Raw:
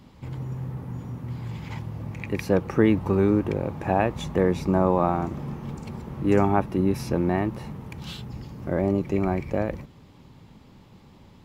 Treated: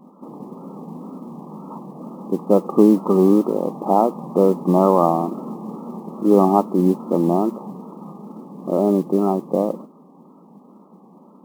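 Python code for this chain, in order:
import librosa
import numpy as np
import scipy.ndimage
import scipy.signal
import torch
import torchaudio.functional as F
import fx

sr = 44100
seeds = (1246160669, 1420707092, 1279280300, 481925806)

y = fx.brickwall_bandpass(x, sr, low_hz=170.0, high_hz=1300.0)
y = fx.mod_noise(y, sr, seeds[0], snr_db=32)
y = fx.wow_flutter(y, sr, seeds[1], rate_hz=2.1, depth_cents=85.0)
y = y * 10.0 ** (7.0 / 20.0)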